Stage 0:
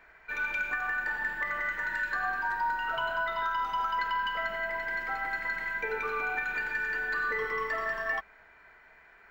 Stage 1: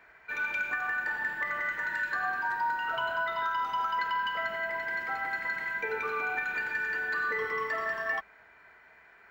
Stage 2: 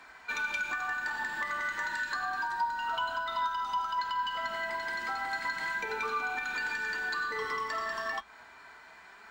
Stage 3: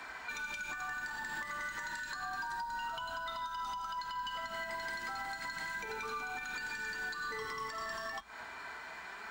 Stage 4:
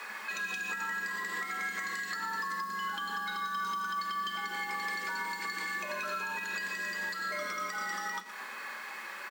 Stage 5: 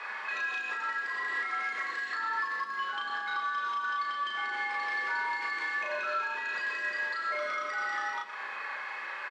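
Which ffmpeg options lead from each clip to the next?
-af "highpass=66"
-filter_complex "[0:a]equalizer=f=125:t=o:w=1:g=-5,equalizer=f=250:t=o:w=1:g=4,equalizer=f=500:t=o:w=1:g=-5,equalizer=f=1000:t=o:w=1:g=6,equalizer=f=2000:t=o:w=1:g=-6,equalizer=f=4000:t=o:w=1:g=9,equalizer=f=8000:t=o:w=1:g=12,acrossover=split=100[s0][s1];[s1]acompressor=threshold=0.0178:ratio=6[s2];[s0][s2]amix=inputs=2:normalize=0,flanger=delay=3.8:depth=4.9:regen=71:speed=0.31:shape=sinusoidal,volume=2.66"
-filter_complex "[0:a]acrossover=split=190|5100[s0][s1][s2];[s1]acompressor=threshold=0.01:ratio=6[s3];[s0][s3][s2]amix=inputs=3:normalize=0,alimiter=level_in=4.47:limit=0.0631:level=0:latency=1:release=195,volume=0.224,volume=2"
-af "acrusher=bits=8:mix=0:aa=0.5,afreqshift=160,aecho=1:1:119:0.237,volume=1.58"
-filter_complex "[0:a]asoftclip=type=hard:threshold=0.0266,highpass=460,lowpass=3100,asplit=2[s0][s1];[s1]adelay=35,volume=0.75[s2];[s0][s2]amix=inputs=2:normalize=0,volume=1.33"

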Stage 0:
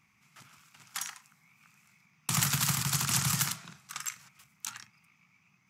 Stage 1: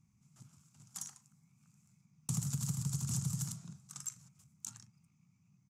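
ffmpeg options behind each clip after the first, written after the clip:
-af "firequalizer=gain_entry='entry(130,0);entry(380,-14);entry(1900,-29);entry(7000,-8);entry(15000,-22)':delay=0.05:min_phase=1,acompressor=threshold=0.0126:ratio=6,volume=1.88"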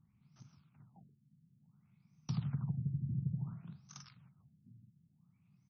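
-af "afftfilt=real='re*lt(b*sr/1024,340*pow(6500/340,0.5+0.5*sin(2*PI*0.57*pts/sr)))':imag='im*lt(b*sr/1024,340*pow(6500/340,0.5+0.5*sin(2*PI*0.57*pts/sr)))':win_size=1024:overlap=0.75"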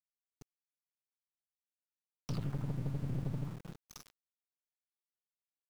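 -af "aeval=exprs='(tanh(89.1*val(0)+0.8)-tanh(0.8))/89.1':c=same,aeval=exprs='val(0)*gte(abs(val(0)),0.002)':c=same,volume=2.11"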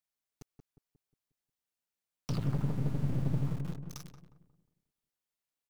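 -filter_complex "[0:a]asplit=2[s0][s1];[s1]adelay=179,lowpass=f=900:p=1,volume=0.562,asplit=2[s2][s3];[s3]adelay=179,lowpass=f=900:p=1,volume=0.47,asplit=2[s4][s5];[s5]adelay=179,lowpass=f=900:p=1,volume=0.47,asplit=2[s6][s7];[s7]adelay=179,lowpass=f=900:p=1,volume=0.47,asplit=2[s8][s9];[s9]adelay=179,lowpass=f=900:p=1,volume=0.47,asplit=2[s10][s11];[s11]adelay=179,lowpass=f=900:p=1,volume=0.47[s12];[s0][s2][s4][s6][s8][s10][s12]amix=inputs=7:normalize=0,volume=1.58"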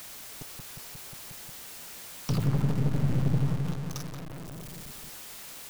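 -af "aeval=exprs='val(0)+0.5*0.0112*sgn(val(0))':c=same,volume=1.68"

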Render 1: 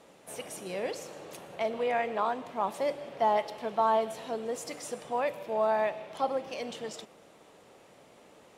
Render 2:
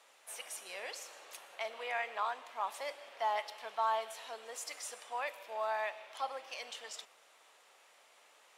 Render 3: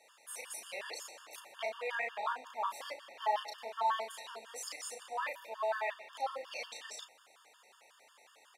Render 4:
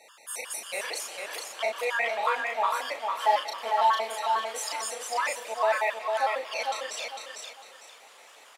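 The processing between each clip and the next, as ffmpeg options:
-af "highpass=1100,volume=0.891"
-filter_complex "[0:a]asplit=2[s0][s1];[s1]adelay=35,volume=0.708[s2];[s0][s2]amix=inputs=2:normalize=0,afftfilt=real='re*gt(sin(2*PI*5.5*pts/sr)*(1-2*mod(floor(b*sr/1024/910),2)),0)':imag='im*gt(sin(2*PI*5.5*pts/sr)*(1-2*mod(floor(b*sr/1024/910),2)),0)':win_size=1024:overlap=0.75,volume=1.26"
-af "aecho=1:1:451|902|1353|1804:0.631|0.183|0.0531|0.0154,volume=2.82"

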